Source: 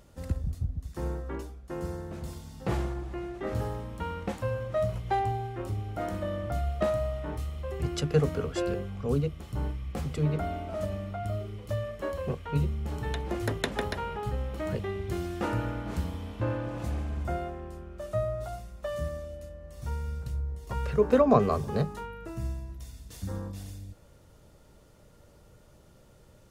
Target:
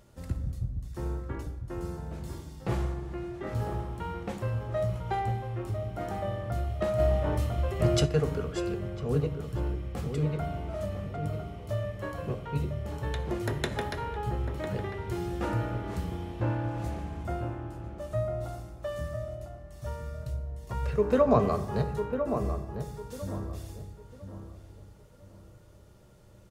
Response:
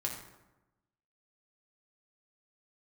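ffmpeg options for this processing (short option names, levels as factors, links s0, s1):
-filter_complex "[0:a]asplit=2[s0][s1];[s1]adelay=1000,lowpass=f=1400:p=1,volume=0.447,asplit=2[s2][s3];[s3]adelay=1000,lowpass=f=1400:p=1,volume=0.29,asplit=2[s4][s5];[s5]adelay=1000,lowpass=f=1400:p=1,volume=0.29,asplit=2[s6][s7];[s7]adelay=1000,lowpass=f=1400:p=1,volume=0.29[s8];[s0][s2][s4][s6][s8]amix=inputs=5:normalize=0,asplit=2[s9][s10];[1:a]atrim=start_sample=2205[s11];[s10][s11]afir=irnorm=-1:irlink=0,volume=0.631[s12];[s9][s12]amix=inputs=2:normalize=0,asplit=3[s13][s14][s15];[s13]afade=t=out:st=6.98:d=0.02[s16];[s14]acontrast=72,afade=t=in:st=6.98:d=0.02,afade=t=out:st=8.05:d=0.02[s17];[s15]afade=t=in:st=8.05:d=0.02[s18];[s16][s17][s18]amix=inputs=3:normalize=0,volume=0.501"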